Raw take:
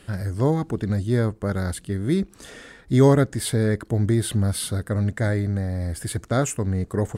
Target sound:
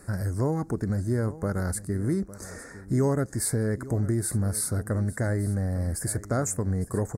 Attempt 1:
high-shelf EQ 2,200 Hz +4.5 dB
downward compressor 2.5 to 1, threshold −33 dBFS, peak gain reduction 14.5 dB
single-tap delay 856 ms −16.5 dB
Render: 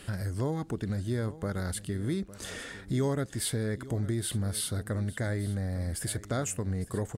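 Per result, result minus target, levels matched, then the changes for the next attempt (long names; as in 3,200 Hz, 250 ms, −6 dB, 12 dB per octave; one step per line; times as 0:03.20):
4,000 Hz band +10.5 dB; downward compressor: peak gain reduction +5 dB
add first: Butterworth band-reject 3,100 Hz, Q 0.84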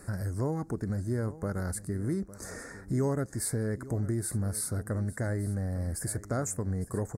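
downward compressor: peak gain reduction +5 dB
change: downward compressor 2.5 to 1, threshold −25 dBFS, peak gain reduction 10 dB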